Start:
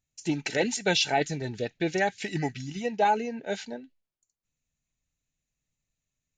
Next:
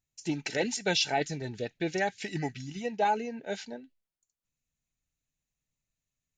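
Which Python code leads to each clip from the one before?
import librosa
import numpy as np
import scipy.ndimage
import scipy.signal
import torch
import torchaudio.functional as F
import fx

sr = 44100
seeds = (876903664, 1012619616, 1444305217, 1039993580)

y = fx.dynamic_eq(x, sr, hz=5200.0, q=4.2, threshold_db=-50.0, ratio=4.0, max_db=4)
y = F.gain(torch.from_numpy(y), -3.5).numpy()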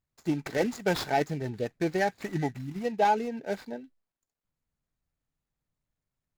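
y = scipy.signal.medfilt(x, 15)
y = F.gain(torch.from_numpy(y), 3.5).numpy()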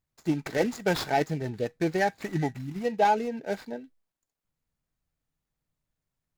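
y = fx.comb_fb(x, sr, f0_hz=160.0, decay_s=0.16, harmonics='all', damping=0.0, mix_pct=30)
y = F.gain(torch.from_numpy(y), 3.5).numpy()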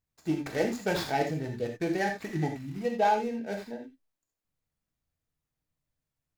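y = fx.rev_gated(x, sr, seeds[0], gate_ms=110, shape='flat', drr_db=2.5)
y = F.gain(torch.from_numpy(y), -4.0).numpy()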